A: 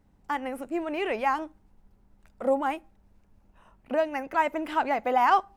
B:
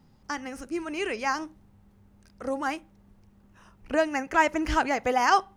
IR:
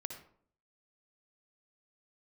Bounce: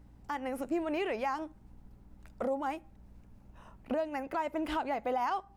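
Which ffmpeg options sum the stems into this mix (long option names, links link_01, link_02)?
-filter_complex "[0:a]acompressor=threshold=-35dB:ratio=1.5,volume=2.5dB[link_01];[1:a]aeval=exprs='val(0)+0.01*(sin(2*PI*60*n/s)+sin(2*PI*2*60*n/s)/2+sin(2*PI*3*60*n/s)/3+sin(2*PI*4*60*n/s)/4+sin(2*PI*5*60*n/s)/5)':channel_layout=same,volume=-17dB[link_02];[link_01][link_02]amix=inputs=2:normalize=0,alimiter=limit=-23.5dB:level=0:latency=1:release=431"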